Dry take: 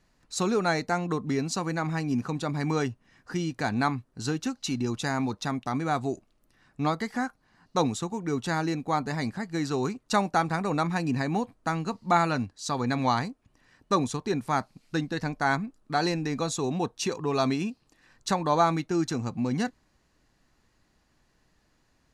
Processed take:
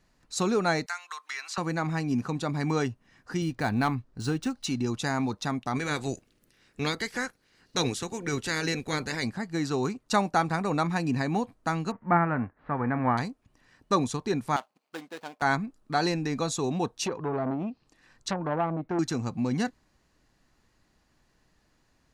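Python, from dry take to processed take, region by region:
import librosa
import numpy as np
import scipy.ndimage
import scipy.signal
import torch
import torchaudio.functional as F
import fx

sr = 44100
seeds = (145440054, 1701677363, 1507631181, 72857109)

y = fx.chain(x, sr, fx.highpass(hz=1200.0, slope=24),
    fx.band_squash(depth_pct=100), at=(0.86, 1.58))
y = fx.chain(y, sr, fx.low_shelf(hz=62.0, db=11.5),
    fx.clip_hard(threshold_db=-17.5),
    fx.resample_linear(factor=3), at=(3.42, 4.65))
y = fx.spec_clip(y, sr, under_db=16, at=(5.75, 9.23), fade=0.02)
y = fx.band_shelf(y, sr, hz=880.0, db=-8.0, octaves=1.3, at=(5.75, 9.23), fade=0.02)
y = fx.envelope_flatten(y, sr, power=0.6, at=(11.9, 13.17), fade=0.02)
y = fx.steep_lowpass(y, sr, hz=1900.0, slope=36, at=(11.9, 13.17), fade=0.02)
y = fx.chain(y, sr, fx.median_filter(points=25),
    fx.highpass(hz=640.0, slope=12), at=(14.56, 15.42))
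y = fx.chain(y, sr, fx.env_lowpass_down(base_hz=680.0, full_db=-22.0),
    fx.transformer_sat(knee_hz=980.0), at=(17.06, 18.99))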